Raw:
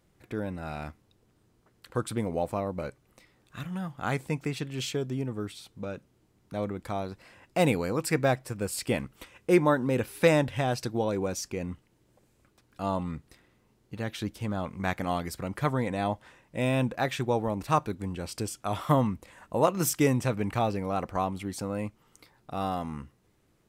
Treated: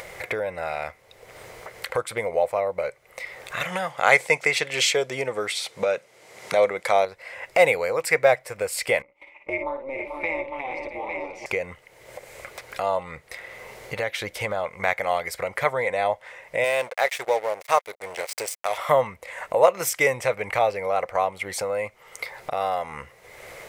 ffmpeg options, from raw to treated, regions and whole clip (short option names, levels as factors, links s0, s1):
-filter_complex "[0:a]asettb=1/sr,asplit=3[s0][s1][s2];[s0]atrim=end=3.614[s3];[s1]atrim=start=3.61:end=7.05,asetpts=PTS-STARTPTS,afade=t=in:d=0.004:c=qsin,afade=t=out:st=3.436:d=0.004:c=qsin,aemphasis=mode=production:type=50fm,acontrast=84,highpass=160,lowpass=6700[s4];[s2]atrim=start=7.046[s5];[s3][s4]acrossfade=d=0.004:c1=hsin:c2=qsin[s6];[s6][s5]acrossfade=d=0.004:c1=qsin:c2=hsin,asettb=1/sr,asplit=3[s7][s8][s9];[s7]atrim=end=9.024[s10];[s8]atrim=start=9.02:end=11.46,asetpts=PTS-STARTPTS,afade=t=in:d=0.004:c=qsin,afade=t=out:st=2.436:d=0.004:c=qsin,asplit=3[s11][s12][s13];[s11]bandpass=f=300:t=q:w=8,volume=1[s14];[s12]bandpass=f=870:t=q:w=8,volume=0.501[s15];[s13]bandpass=f=2240:t=q:w=8,volume=0.355[s16];[s14][s15][s16]amix=inputs=3:normalize=0,tremolo=f=270:d=0.571,aecho=1:1:55|60|439|470|670|854:0.398|0.141|0.2|0.251|0.119|0.398,atrim=end_sample=107604[s17];[s9]atrim=start=11.456[s18];[s10][s17]acrossfade=d=0.004:c1=hsin:c2=qsin[s19];[s19][s18]acrossfade=d=0.004:c1=qsin:c2=hsin,asettb=1/sr,asplit=3[s20][s21][s22];[s20]atrim=end=16.644[s23];[s21]atrim=start=16.64:end=18.78,asetpts=PTS-STARTPTS,afade=t=in:d=0.004:c=qsin,afade=t=out:st=2.136:d=0.004:c=qsin,aeval=exprs='sgn(val(0))*max(abs(val(0))-0.0106,0)':c=same,bass=f=250:g=-12,treble=f=4000:g=6[s24];[s22]atrim=start=18.776[s25];[s23][s24]acrossfade=d=0.004:c1=hsin:c2=qsin[s26];[s26][s25]acrossfade=d=0.004:c1=qsin:c2=hsin,lowshelf=f=380:t=q:w=3:g=-11.5,acompressor=mode=upward:threshold=0.0562:ratio=2.5,equalizer=f=2100:w=4.3:g=13.5,volume=1.33"